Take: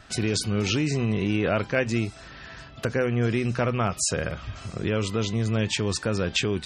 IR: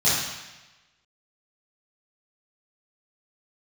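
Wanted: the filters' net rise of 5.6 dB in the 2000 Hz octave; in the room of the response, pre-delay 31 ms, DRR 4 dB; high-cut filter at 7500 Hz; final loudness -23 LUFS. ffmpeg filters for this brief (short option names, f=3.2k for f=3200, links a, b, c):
-filter_complex "[0:a]lowpass=7.5k,equalizer=f=2k:t=o:g=7.5,asplit=2[a][b];[1:a]atrim=start_sample=2205,adelay=31[c];[b][c]afir=irnorm=-1:irlink=0,volume=-20dB[d];[a][d]amix=inputs=2:normalize=0,volume=-0.5dB"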